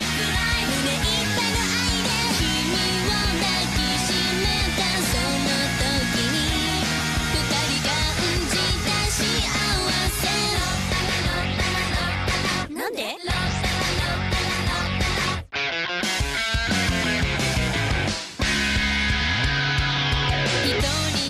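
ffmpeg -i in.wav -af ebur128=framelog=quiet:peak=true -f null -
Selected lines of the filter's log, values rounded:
Integrated loudness:
  I:         -21.8 LUFS
  Threshold: -31.8 LUFS
Loudness range:
  LRA:         2.6 LU
  Threshold: -41.9 LUFS
  LRA low:   -23.6 LUFS
  LRA high:  -21.0 LUFS
True peak:
  Peak:      -10.8 dBFS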